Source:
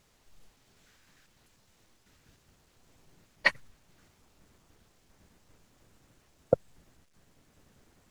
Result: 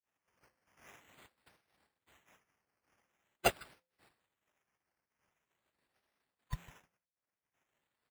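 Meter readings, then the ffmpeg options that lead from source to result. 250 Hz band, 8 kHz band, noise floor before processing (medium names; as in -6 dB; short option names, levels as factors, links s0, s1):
-6.0 dB, +8.0 dB, -67 dBFS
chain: -filter_complex "[0:a]afftfilt=real='real(if(lt(b,1008),b+24*(1-2*mod(floor(b/24),2)),b),0)':imag='imag(if(lt(b,1008),b+24*(1-2*mod(floor(b/24),2)),b),0)':win_size=2048:overlap=0.75,asplit=2[s0][s1];[s1]adelay=152,lowpass=f=3600:p=1,volume=0.0708,asplit=2[s2][s3];[s3]adelay=152,lowpass=f=3600:p=1,volume=0.19[s4];[s0][s2][s4]amix=inputs=3:normalize=0,acrossover=split=320|3000[s5][s6][s7];[s6]acompressor=threshold=0.00141:ratio=2[s8];[s5][s8][s7]amix=inputs=3:normalize=0,equalizer=f=67:w=0.41:g=-4,asoftclip=type=tanh:threshold=0.126,firequalizer=gain_entry='entry(140,0);entry(280,-24);entry(740,-11);entry(2000,10);entry(3000,-3);entry(5300,13)':delay=0.05:min_phase=1,agate=range=0.00158:threshold=0.00158:ratio=16:detection=peak,bandreject=f=172.6:t=h:w=4,bandreject=f=345.2:t=h:w=4,bandreject=f=517.8:t=h:w=4,bandreject=f=690.4:t=h:w=4,bandreject=f=863:t=h:w=4,acrusher=samples=9:mix=1:aa=0.000001:lfo=1:lforange=5.4:lforate=0.45,highpass=51"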